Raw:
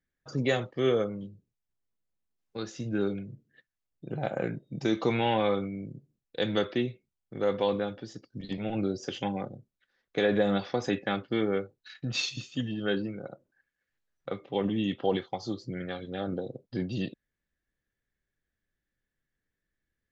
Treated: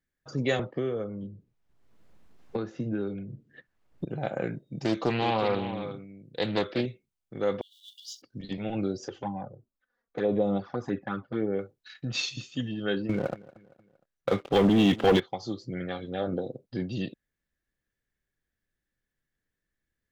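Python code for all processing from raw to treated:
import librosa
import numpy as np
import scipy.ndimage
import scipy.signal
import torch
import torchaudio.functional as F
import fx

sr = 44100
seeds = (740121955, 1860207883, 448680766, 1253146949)

y = fx.chain(x, sr, fx.lowpass(hz=1300.0, slope=6),
    fx.band_squash(depth_pct=100), at=(0.59, 4.05))
y = fx.chain(y, sr, fx.echo_single(ms=367, db=-10.5),
    fx.doppler_dist(depth_ms=0.35), at=(4.84, 6.86))
y = fx.chain(y, sr, fx.law_mismatch(coded='mu'),
    fx.over_compress(threshold_db=-32.0, ratio=-0.5),
    fx.brickwall_highpass(low_hz=2800.0), at=(7.61, 8.22))
y = fx.chain(y, sr, fx.high_shelf_res(hz=1800.0, db=-10.0, q=1.5),
    fx.env_flanger(rest_ms=4.4, full_db=-21.5), at=(9.08, 11.59))
y = fx.chain(y, sr, fx.leveller(passes=3),
    fx.echo_feedback(ms=232, feedback_pct=44, wet_db=-21.0), at=(13.09, 15.2))
y = fx.chain(y, sr, fx.peak_eq(hz=570.0, db=4.0, octaves=2.1),
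    fx.doubler(ms=12.0, db=-11), at=(15.72, 16.52))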